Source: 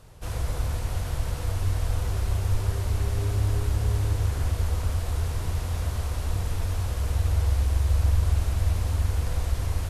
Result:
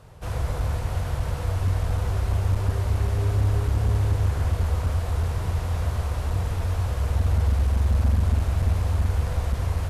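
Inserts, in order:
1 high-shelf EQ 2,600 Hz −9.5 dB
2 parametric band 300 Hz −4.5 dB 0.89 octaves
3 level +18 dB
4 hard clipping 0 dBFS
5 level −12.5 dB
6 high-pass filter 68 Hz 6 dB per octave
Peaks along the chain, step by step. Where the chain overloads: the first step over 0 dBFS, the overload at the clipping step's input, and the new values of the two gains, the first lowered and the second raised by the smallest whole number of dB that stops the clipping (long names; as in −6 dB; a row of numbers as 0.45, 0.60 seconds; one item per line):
−12.5, −12.5, +5.5, 0.0, −12.5, −11.5 dBFS
step 3, 5.5 dB
step 3 +12 dB, step 5 −6.5 dB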